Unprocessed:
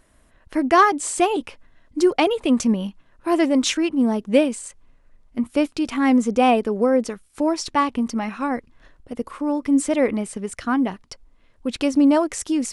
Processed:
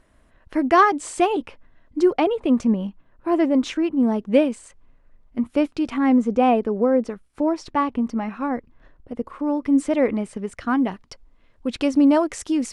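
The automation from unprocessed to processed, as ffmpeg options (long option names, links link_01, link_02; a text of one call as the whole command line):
ffmpeg -i in.wav -af "asetnsamples=nb_out_samples=441:pad=0,asendcmd='1.35 lowpass f 2000;2.19 lowpass f 1200;4.03 lowpass f 2300;5.98 lowpass f 1300;9.39 lowpass f 2400;10.67 lowpass f 4600',lowpass=frequency=3300:poles=1" out.wav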